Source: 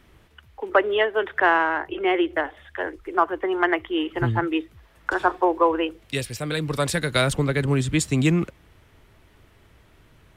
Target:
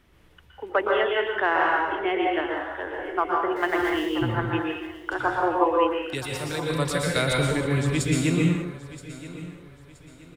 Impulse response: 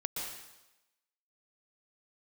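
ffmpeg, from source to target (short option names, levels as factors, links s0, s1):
-filter_complex "[0:a]asettb=1/sr,asplit=3[s0][s1][s2];[s0]atrim=end=3.564[s3];[s1]atrim=start=3.56:end=4.06,asetpts=PTS-STARTPTS,afade=t=in:d=0.004:c=qsin,afade=t=out:st=0.496:d=0.004:c=qsin,aeval=exprs='val(0)+0.5*0.0237*sgn(val(0))':c=same[s4];[s2]atrim=start=4.056[s5];[s3][s4]acrossfade=d=0.004:c1=hsin:c2=qsin[s6];[s6][s5]acrossfade=d=0.004:c1=qsin:c2=hsin,aecho=1:1:974|1948|2922:0.15|0.0509|0.0173[s7];[1:a]atrim=start_sample=2205,afade=t=out:st=0.4:d=0.01,atrim=end_sample=18081[s8];[s7][s8]afir=irnorm=-1:irlink=0,volume=0.631"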